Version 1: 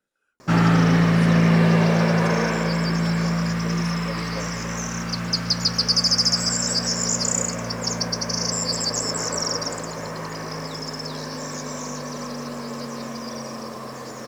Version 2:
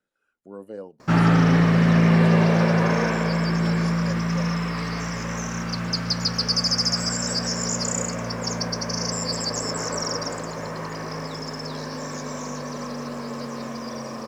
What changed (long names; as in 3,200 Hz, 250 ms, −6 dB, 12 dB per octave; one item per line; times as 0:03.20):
background: entry +0.60 s
master: add high-shelf EQ 4,900 Hz −6.5 dB